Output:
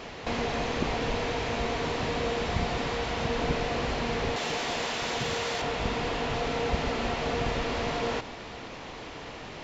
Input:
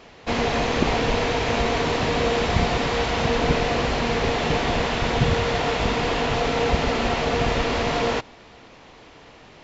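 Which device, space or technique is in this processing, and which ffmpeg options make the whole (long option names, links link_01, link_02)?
de-esser from a sidechain: -filter_complex "[0:a]asplit=2[link_01][link_02];[link_02]highpass=frequency=5900:poles=1,apad=whole_len=424890[link_03];[link_01][link_03]sidechaincompress=threshold=-47dB:ratio=16:attack=2.8:release=21,asettb=1/sr,asplit=3[link_04][link_05][link_06];[link_04]atrim=end=4.364[link_07];[link_05]atrim=start=4.36:end=5.62,asetpts=PTS-STARTPTS,afade=type=in:duration=0.004:curve=qsin,afade=type=out:start_time=1.256:duration=0.004:curve=qsin,aemphasis=mode=production:type=bsi[link_08];[link_06]atrim=start=5.616[link_09];[link_07][link_08]acrossfade=duration=0.004:curve1=hsin:curve2=qsin[link_10];[link_10][link_09]acrossfade=duration=0.004:curve1=qsin:curve2=hsin,volume=6dB"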